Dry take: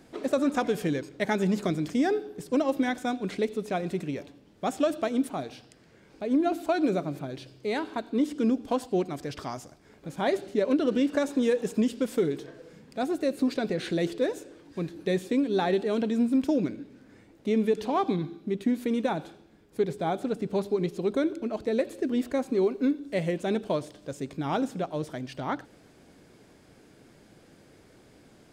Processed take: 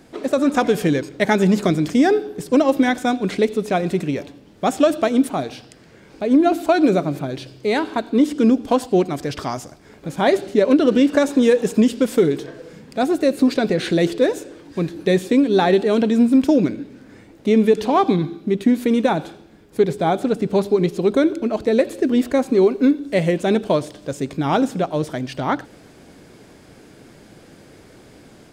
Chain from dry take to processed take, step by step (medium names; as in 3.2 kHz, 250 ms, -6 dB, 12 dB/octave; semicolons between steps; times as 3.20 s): level rider gain up to 4 dB; trim +6 dB